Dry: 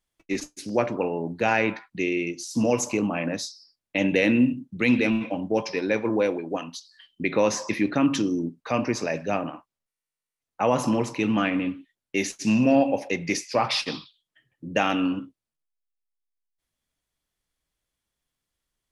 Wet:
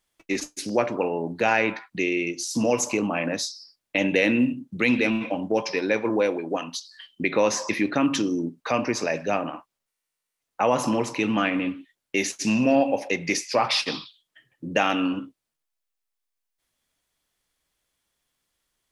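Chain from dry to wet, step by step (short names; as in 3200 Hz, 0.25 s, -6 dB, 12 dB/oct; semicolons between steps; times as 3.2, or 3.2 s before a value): low shelf 220 Hz -8 dB; in parallel at +2 dB: compressor, threshold -35 dBFS, peak gain reduction 17.5 dB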